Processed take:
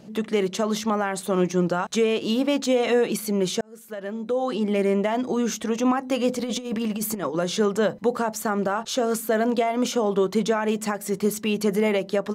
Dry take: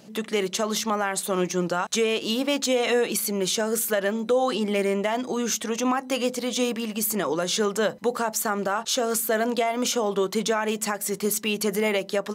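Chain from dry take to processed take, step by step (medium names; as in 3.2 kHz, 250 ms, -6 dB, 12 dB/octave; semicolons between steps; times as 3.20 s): tilt EQ -2 dB/octave; 3.61–4.92 s: fade in; 6.28–7.35 s: compressor with a negative ratio -26 dBFS, ratio -0.5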